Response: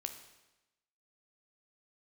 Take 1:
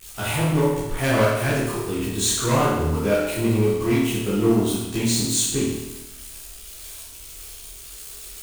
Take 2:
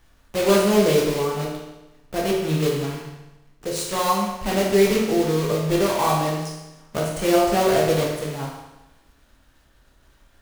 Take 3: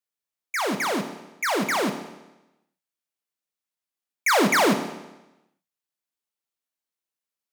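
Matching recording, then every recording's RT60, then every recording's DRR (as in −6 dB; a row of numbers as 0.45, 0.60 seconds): 3; 1.0, 1.0, 1.0 seconds; −11.5, −3.5, 6.0 decibels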